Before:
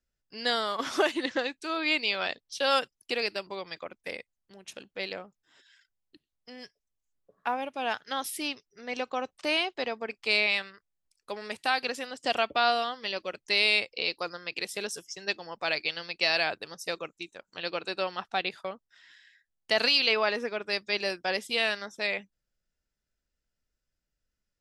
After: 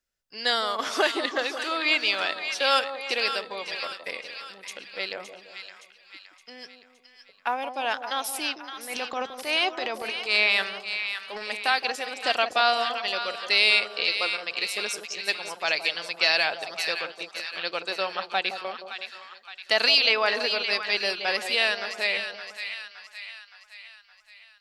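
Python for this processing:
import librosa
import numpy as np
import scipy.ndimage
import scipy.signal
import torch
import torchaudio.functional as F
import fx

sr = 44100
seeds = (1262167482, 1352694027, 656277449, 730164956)

y = fx.low_shelf(x, sr, hz=360.0, db=-12.0)
y = fx.transient(y, sr, attack_db=-6, sustain_db=8, at=(8.84, 11.44), fade=0.02)
y = fx.echo_split(y, sr, split_hz=970.0, low_ms=169, high_ms=567, feedback_pct=52, wet_db=-8.5)
y = y * 10.0 ** (4.5 / 20.0)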